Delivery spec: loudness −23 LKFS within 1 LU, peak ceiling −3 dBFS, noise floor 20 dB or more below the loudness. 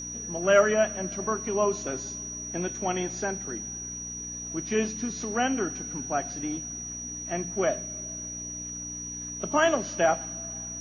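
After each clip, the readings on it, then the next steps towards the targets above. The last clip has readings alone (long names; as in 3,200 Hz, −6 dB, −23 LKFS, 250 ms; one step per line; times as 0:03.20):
mains hum 60 Hz; hum harmonics up to 300 Hz; level of the hum −42 dBFS; interfering tone 5,800 Hz; level of the tone −35 dBFS; integrated loudness −28.5 LKFS; sample peak −6.5 dBFS; target loudness −23.0 LKFS
→ hum removal 60 Hz, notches 5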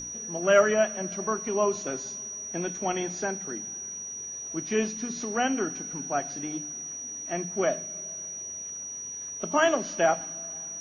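mains hum none found; interfering tone 5,800 Hz; level of the tone −35 dBFS
→ notch filter 5,800 Hz, Q 30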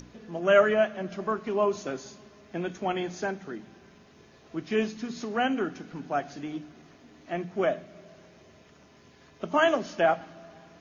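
interfering tone none found; integrated loudness −28.5 LKFS; sample peak −6.5 dBFS; target loudness −23.0 LKFS
→ level +5.5 dB
brickwall limiter −3 dBFS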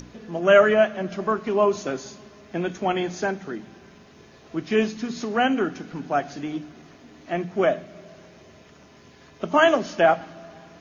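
integrated loudness −23.0 LKFS; sample peak −3.0 dBFS; background noise floor −51 dBFS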